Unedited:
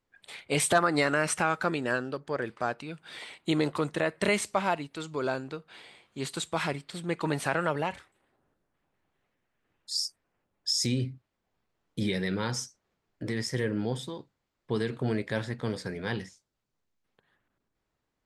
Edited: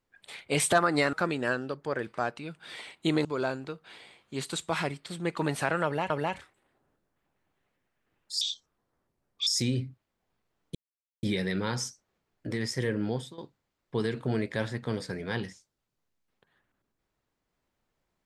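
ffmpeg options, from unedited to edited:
-filter_complex "[0:a]asplit=8[a][b][c][d][e][f][g][h];[a]atrim=end=1.132[i];[b]atrim=start=1.558:end=3.682[j];[c]atrim=start=5.088:end=7.942[k];[d]atrim=start=7.678:end=9.994[l];[e]atrim=start=9.99:end=10.71,asetpts=PTS-STARTPTS,asetrate=29988,aresample=44100,atrim=end_sample=46694,asetpts=PTS-STARTPTS[m];[f]atrim=start=10.706:end=11.99,asetpts=PTS-STARTPTS,afade=t=out:st=1.28:d=0.004:c=hsin,apad=pad_dur=0.48[n];[g]atrim=start=11.99:end=14.14,asetpts=PTS-STARTPTS,afade=t=in:d=0.004:c=hsin,afade=t=out:st=1.9:d=0.25:silence=0.199526[o];[h]atrim=start=14.14,asetpts=PTS-STARTPTS,afade=t=in:d=0.004:c=hsin:silence=0.199526[p];[i][j]acrossfade=d=0.004:c1=hsin:c2=hsin[q];[q][k]acrossfade=d=0.004:c1=hsin:c2=hsin[r];[r][l]acrossfade=d=0.004:c1=hsin:c2=hsin[s];[s][m]acrossfade=d=0.004:c1=hsin:c2=hsin[t];[n][o][p]concat=n=3:v=0:a=1[u];[t][u]acrossfade=d=0.004:c1=hsin:c2=hsin"

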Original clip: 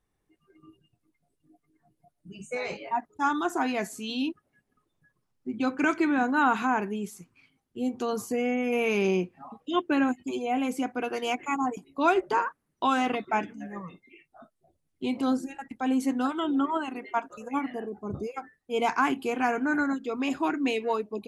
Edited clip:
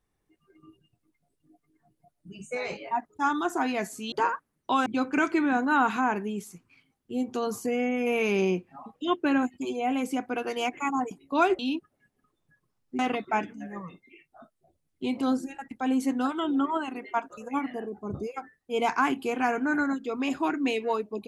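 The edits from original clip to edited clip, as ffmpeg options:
-filter_complex "[0:a]asplit=5[a][b][c][d][e];[a]atrim=end=4.122[f];[b]atrim=start=12.248:end=12.992[g];[c]atrim=start=5.518:end=12.252[h];[d]atrim=start=4.118:end=5.522[i];[e]atrim=start=12.988[j];[f][g]acrossfade=d=0.004:c1=hsin:c2=hsin[k];[k][h]acrossfade=d=0.004:c1=hsin:c2=hsin[l];[l][i]acrossfade=d=0.004:c1=hsin:c2=hsin[m];[m][j]acrossfade=d=0.004:c1=hsin:c2=hsin"

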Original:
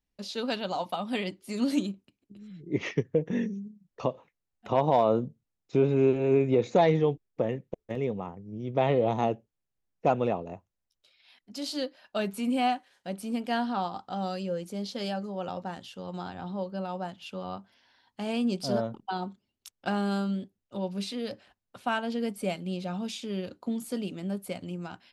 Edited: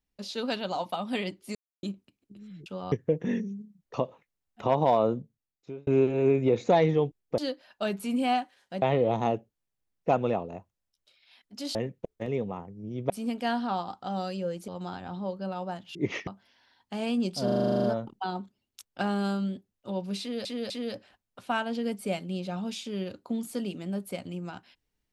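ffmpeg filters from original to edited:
-filter_complex "[0:a]asplit=25[a][b][c][d][e][f][g][h][i][j][k][l][m][n][o][p][q][r][s][t][u][v][w][x][y];[a]atrim=end=1.55,asetpts=PTS-STARTPTS,afade=t=out:st=1.546:d=0.004:c=hsin[z];[b]atrim=start=1.55:end=1.83,asetpts=PTS-STARTPTS,volume=0[aa];[c]atrim=start=1.83:end=2.662,asetpts=PTS-STARTPTS,afade=t=in:d=0.004:c=hsin[ab];[d]atrim=start=17.278:end=17.542[ac];[e]atrim=start=2.978:end=5.93,asetpts=PTS-STARTPTS,afade=t=out:st=2.062:d=0.89[ad];[f]atrim=start=5.93:end=7.442,asetpts=PTS-STARTPTS,afade=t=in:d=0.004:c=hsin[ae];[g]atrim=start=11.718:end=13.162[af];[h]atrim=start=8.788:end=11.722[ag];[i]atrim=start=7.438:end=8.792[ah];[j]atrim=start=13.158:end=14.742[ai];[k]atrim=start=16.008:end=17.282[aj];[l]atrim=start=2.658:end=2.982[ak];[m]atrim=start=17.538:end=18.752[al];[n]atrim=start=18.708:end=18.752[am];[o]atrim=start=18.708:end=18.752[an];[p]atrim=start=18.708:end=18.752[ao];[q]atrim=start=18.708:end=18.752[ap];[r]atrim=start=18.708:end=18.752[aq];[s]atrim=start=18.708:end=18.752[ar];[t]atrim=start=18.708:end=18.752[as];[u]atrim=start=18.708:end=18.752[at];[v]atrim=start=18.708:end=18.752[au];[w]atrim=start=18.708:end=21.322[av];[x]atrim=start=21.068:end=21.322[aw];[y]atrim=start=21.068[ax];[z][aa][ab]concat=n=3:v=0:a=1[ay];[ay][ac]acrossfade=d=0.004:c1=hsin:c2=hsin[az];[ad][ae]concat=n=2:v=0:a=1[ba];[az][ba]acrossfade=d=0.004:c1=hsin:c2=hsin[bb];[bb][af]acrossfade=d=0.004:c1=hsin:c2=hsin[bc];[bc][ag]acrossfade=d=0.004:c1=hsin:c2=hsin[bd];[bd][ah]acrossfade=d=0.004:c1=hsin:c2=hsin[be];[be][ai]acrossfade=d=0.004:c1=hsin:c2=hsin[bf];[bf][aj]acrossfade=d=0.004:c1=hsin:c2=hsin[bg];[bg][ak]acrossfade=d=0.004:c1=hsin:c2=hsin[bh];[bh][al]acrossfade=d=0.004:c1=hsin:c2=hsin[bi];[bi][am]acrossfade=d=0.004:c1=hsin:c2=hsin[bj];[bj][an]acrossfade=d=0.004:c1=hsin:c2=hsin[bk];[bk][ao]acrossfade=d=0.004:c1=hsin:c2=hsin[bl];[bl][ap]acrossfade=d=0.004:c1=hsin:c2=hsin[bm];[bm][aq]acrossfade=d=0.004:c1=hsin:c2=hsin[bn];[bn][ar]acrossfade=d=0.004:c1=hsin:c2=hsin[bo];[bo][as]acrossfade=d=0.004:c1=hsin:c2=hsin[bp];[bp][at]acrossfade=d=0.004:c1=hsin:c2=hsin[bq];[bq][au]acrossfade=d=0.004:c1=hsin:c2=hsin[br];[br][av]acrossfade=d=0.004:c1=hsin:c2=hsin[bs];[bs][aw]acrossfade=d=0.004:c1=hsin:c2=hsin[bt];[bt][ax]acrossfade=d=0.004:c1=hsin:c2=hsin"

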